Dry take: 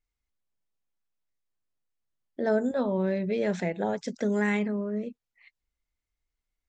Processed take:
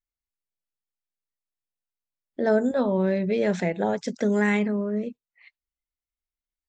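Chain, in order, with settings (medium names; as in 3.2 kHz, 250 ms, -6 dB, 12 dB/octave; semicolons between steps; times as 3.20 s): spectral noise reduction 15 dB; trim +4 dB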